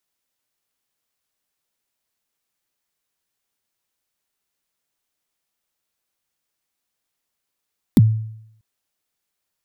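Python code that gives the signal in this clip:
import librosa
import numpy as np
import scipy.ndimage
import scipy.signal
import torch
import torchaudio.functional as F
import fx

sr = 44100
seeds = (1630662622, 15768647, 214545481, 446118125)

y = fx.drum_kick(sr, seeds[0], length_s=0.64, level_db=-5.0, start_hz=300.0, end_hz=110.0, sweep_ms=33.0, decay_s=0.74, click=True)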